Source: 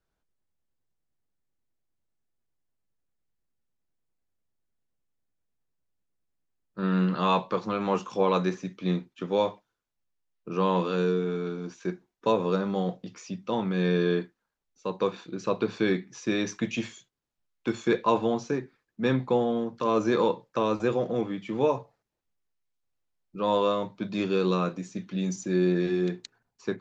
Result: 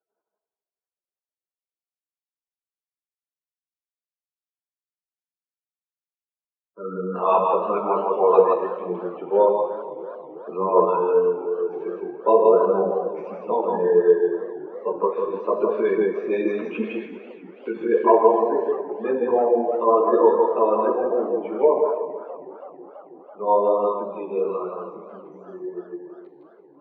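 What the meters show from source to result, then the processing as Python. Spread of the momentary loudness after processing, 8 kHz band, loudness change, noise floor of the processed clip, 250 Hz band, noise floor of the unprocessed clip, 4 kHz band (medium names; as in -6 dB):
18 LU, no reading, +7.0 dB, under -85 dBFS, -1.0 dB, -83 dBFS, under -15 dB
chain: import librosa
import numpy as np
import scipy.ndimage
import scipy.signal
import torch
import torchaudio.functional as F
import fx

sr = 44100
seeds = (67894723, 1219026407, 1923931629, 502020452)

p1 = fx.fade_out_tail(x, sr, length_s=6.66)
p2 = fx.spec_gate(p1, sr, threshold_db=-20, keep='strong')
p3 = fx.rider(p2, sr, range_db=4, speed_s=2.0)
p4 = p2 + F.gain(torch.from_numpy(p3), 2.0).numpy()
p5 = p4 + 10.0 ** (-3.0 / 20.0) * np.pad(p4, (int(162 * sr / 1000.0), 0))[:len(p4)]
p6 = fx.rev_schroeder(p5, sr, rt60_s=1.4, comb_ms=29, drr_db=6.0)
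p7 = fx.chorus_voices(p6, sr, voices=4, hz=1.1, base_ms=12, depth_ms=3.2, mix_pct=55)
p8 = fx.cabinet(p7, sr, low_hz=260.0, low_slope=24, high_hz=2500.0, hz=(280.0, 420.0, 660.0, 980.0, 1700.0), db=(-6, 9, 9, 7, -4))
p9 = fx.echo_warbled(p8, sr, ms=326, feedback_pct=73, rate_hz=2.8, cents=150, wet_db=-19.0)
y = F.gain(torch.from_numpy(p9), -3.5).numpy()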